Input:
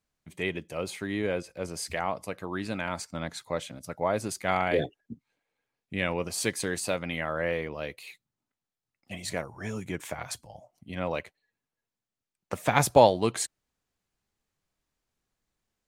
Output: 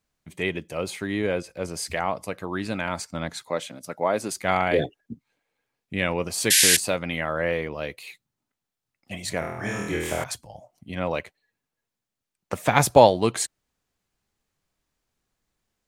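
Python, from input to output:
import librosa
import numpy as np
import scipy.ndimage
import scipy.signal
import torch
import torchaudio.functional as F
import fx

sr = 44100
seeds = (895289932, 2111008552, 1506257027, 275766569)

y = fx.highpass(x, sr, hz=190.0, slope=12, at=(3.43, 4.36))
y = fx.spec_paint(y, sr, seeds[0], shape='noise', start_s=6.5, length_s=0.27, low_hz=1500.0, high_hz=12000.0, level_db=-21.0)
y = fx.room_flutter(y, sr, wall_m=4.2, rt60_s=0.95, at=(9.39, 10.24))
y = y * 10.0 ** (4.0 / 20.0)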